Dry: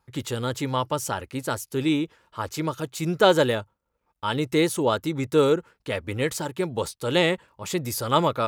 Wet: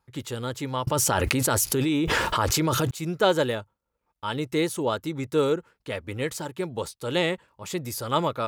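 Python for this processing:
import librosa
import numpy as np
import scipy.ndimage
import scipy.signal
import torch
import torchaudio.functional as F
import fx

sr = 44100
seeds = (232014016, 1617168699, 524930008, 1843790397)

y = fx.env_flatten(x, sr, amount_pct=100, at=(0.87, 2.91))
y = F.gain(torch.from_numpy(y), -3.5).numpy()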